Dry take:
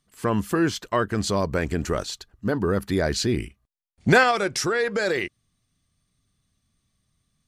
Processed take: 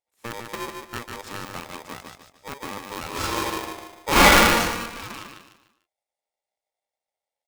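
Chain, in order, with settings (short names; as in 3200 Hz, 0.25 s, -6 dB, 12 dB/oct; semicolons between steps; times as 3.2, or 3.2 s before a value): 0.57–1.09 LPF 1200 Hz 24 dB/oct; added harmonics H 6 -25 dB, 7 -19 dB, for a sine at -4.5 dBFS; feedback echo 0.148 s, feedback 36%, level -5 dB; 3.09–4.6 reverb throw, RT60 1 s, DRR -10 dB; polarity switched at an audio rate 700 Hz; gain -6.5 dB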